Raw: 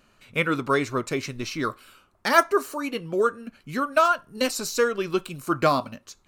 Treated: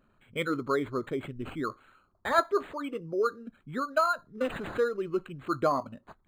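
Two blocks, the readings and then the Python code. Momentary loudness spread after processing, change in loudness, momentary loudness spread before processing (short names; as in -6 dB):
11 LU, -6.0 dB, 10 LU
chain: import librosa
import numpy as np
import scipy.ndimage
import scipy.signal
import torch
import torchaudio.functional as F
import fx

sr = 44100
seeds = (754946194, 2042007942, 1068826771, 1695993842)

y = fx.envelope_sharpen(x, sr, power=1.5)
y = fx.peak_eq(y, sr, hz=3100.0, db=-12.0, octaves=0.29)
y = np.interp(np.arange(len(y)), np.arange(len(y))[::8], y[::8])
y = y * librosa.db_to_amplitude(-5.0)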